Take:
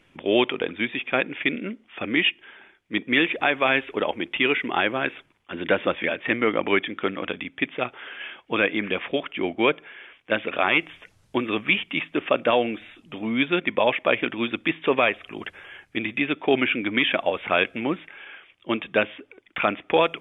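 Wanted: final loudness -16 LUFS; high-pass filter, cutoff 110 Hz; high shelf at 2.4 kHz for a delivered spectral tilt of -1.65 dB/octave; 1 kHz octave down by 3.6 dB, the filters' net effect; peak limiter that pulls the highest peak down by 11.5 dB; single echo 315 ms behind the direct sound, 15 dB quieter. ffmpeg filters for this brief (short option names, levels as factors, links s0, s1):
-af "highpass=110,equalizer=f=1000:t=o:g=-6,highshelf=f=2400:g=4.5,alimiter=limit=0.133:level=0:latency=1,aecho=1:1:315:0.178,volume=4.73"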